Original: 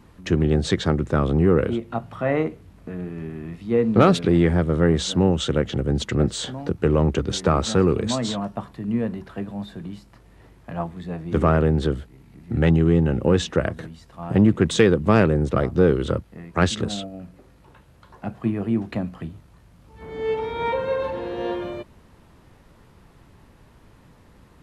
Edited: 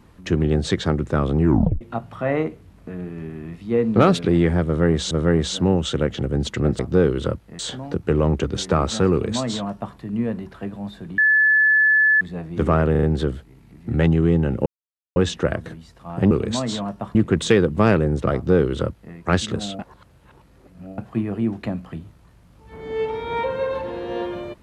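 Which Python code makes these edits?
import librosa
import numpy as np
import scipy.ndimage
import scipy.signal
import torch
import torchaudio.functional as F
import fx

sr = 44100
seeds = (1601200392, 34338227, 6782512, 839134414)

y = fx.edit(x, sr, fx.tape_stop(start_s=1.42, length_s=0.39),
    fx.repeat(start_s=4.66, length_s=0.45, count=2),
    fx.duplicate(start_s=7.87, length_s=0.84, to_s=14.44),
    fx.bleep(start_s=9.93, length_s=1.03, hz=1730.0, db=-12.5),
    fx.stutter(start_s=11.66, slice_s=0.04, count=4),
    fx.insert_silence(at_s=13.29, length_s=0.5),
    fx.duplicate(start_s=15.63, length_s=0.8, to_s=6.34),
    fx.reverse_span(start_s=17.08, length_s=1.19), tone=tone)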